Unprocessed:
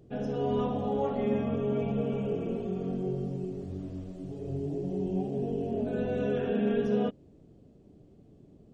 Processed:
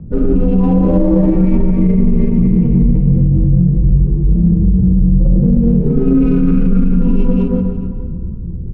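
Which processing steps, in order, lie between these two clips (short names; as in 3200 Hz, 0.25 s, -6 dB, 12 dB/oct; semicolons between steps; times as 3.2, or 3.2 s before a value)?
spectral contrast raised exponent 1.7; mistuned SSB -230 Hz 180–3000 Hz; speakerphone echo 0.24 s, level -11 dB; low-pass opened by the level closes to 480 Hz, open at -29 dBFS; reverse; compressor, threshold -39 dBFS, peak gain reduction 15.5 dB; reverse; plate-style reverb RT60 2.1 s, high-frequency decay 0.8×, DRR -5.5 dB; maximiser +33 dB; running maximum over 5 samples; gain -2.5 dB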